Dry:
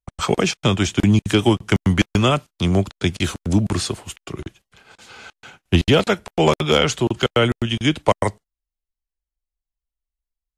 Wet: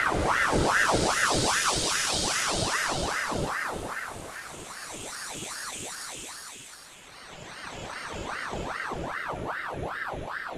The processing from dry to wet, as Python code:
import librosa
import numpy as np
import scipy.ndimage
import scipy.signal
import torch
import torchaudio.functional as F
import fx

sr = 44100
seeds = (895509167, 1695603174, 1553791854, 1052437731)

y = fx.paulstretch(x, sr, seeds[0], factor=14.0, window_s=0.25, from_s=3.7)
y = fx.ring_lfo(y, sr, carrier_hz=960.0, swing_pct=80, hz=2.5)